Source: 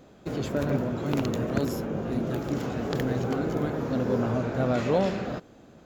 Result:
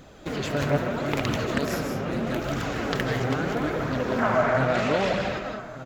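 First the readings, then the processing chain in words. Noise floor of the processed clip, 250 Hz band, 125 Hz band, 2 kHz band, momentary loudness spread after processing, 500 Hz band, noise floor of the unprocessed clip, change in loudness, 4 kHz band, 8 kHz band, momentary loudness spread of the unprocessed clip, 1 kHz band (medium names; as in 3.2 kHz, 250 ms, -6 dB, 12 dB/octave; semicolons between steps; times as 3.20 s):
-40 dBFS, -0.5 dB, +0.5 dB, +10.0 dB, 7 LU, +2.5 dB, -53 dBFS, +2.0 dB, +7.5 dB, +5.5 dB, 6 LU, +6.5 dB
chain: hum notches 60/120 Hz; time-frequency box 4.18–4.58 s, 590–2300 Hz +8 dB; on a send: delay 1190 ms -21 dB; on the sum: algorithmic reverb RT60 0.5 s, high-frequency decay 0.6×, pre-delay 115 ms, DRR 3.5 dB; flange 0.77 Hz, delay 0.5 ms, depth 7.6 ms, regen +45%; peaking EQ 310 Hz -5.5 dB 2.9 oct; in parallel at +1 dB: compression, threshold -45 dBFS, peak gain reduction 19 dB; on the sum: dynamic bell 2.1 kHz, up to +5 dB, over -50 dBFS, Q 0.9; loudspeaker Doppler distortion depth 0.31 ms; trim +6 dB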